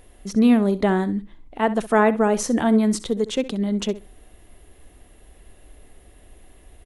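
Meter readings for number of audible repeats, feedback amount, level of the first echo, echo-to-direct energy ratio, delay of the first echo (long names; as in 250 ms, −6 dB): 2, 18%, −16.0 dB, −16.0 dB, 65 ms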